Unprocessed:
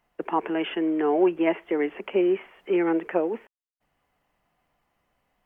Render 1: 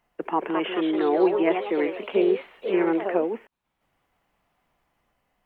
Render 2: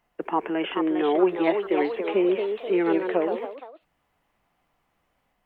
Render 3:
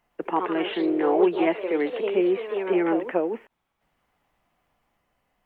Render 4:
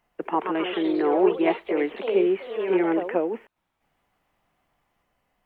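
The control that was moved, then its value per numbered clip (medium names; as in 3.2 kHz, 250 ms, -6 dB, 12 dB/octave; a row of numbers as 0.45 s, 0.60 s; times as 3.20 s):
ever faster or slower copies, time: 249 ms, 464 ms, 111 ms, 165 ms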